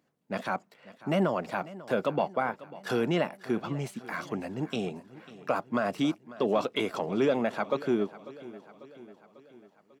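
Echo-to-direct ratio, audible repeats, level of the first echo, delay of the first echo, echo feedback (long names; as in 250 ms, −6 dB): −16.5 dB, 4, −18.0 dB, 545 ms, 56%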